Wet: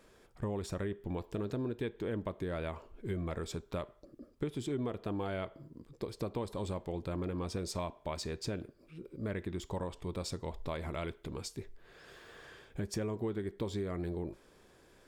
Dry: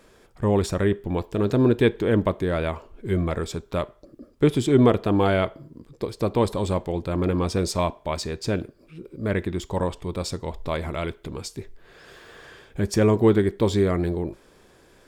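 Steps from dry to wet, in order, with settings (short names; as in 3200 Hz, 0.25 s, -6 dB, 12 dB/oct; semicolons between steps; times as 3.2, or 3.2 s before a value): compressor 6:1, threshold -26 dBFS, peak gain reduction 13.5 dB; gain -7.5 dB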